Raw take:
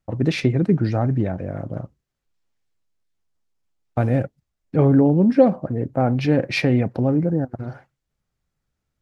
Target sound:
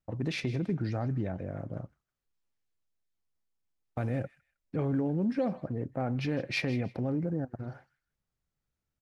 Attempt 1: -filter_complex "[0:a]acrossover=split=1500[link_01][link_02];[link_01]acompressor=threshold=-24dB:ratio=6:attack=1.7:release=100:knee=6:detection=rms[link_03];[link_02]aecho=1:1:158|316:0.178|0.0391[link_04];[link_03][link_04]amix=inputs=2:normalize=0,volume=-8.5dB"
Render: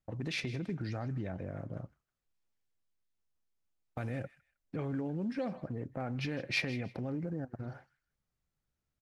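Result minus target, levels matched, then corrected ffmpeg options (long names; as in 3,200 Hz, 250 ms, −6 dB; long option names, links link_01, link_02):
downward compressor: peak gain reduction +6.5 dB
-filter_complex "[0:a]acrossover=split=1500[link_01][link_02];[link_01]acompressor=threshold=-16dB:ratio=6:attack=1.7:release=100:knee=6:detection=rms[link_03];[link_02]aecho=1:1:158|316:0.178|0.0391[link_04];[link_03][link_04]amix=inputs=2:normalize=0,volume=-8.5dB"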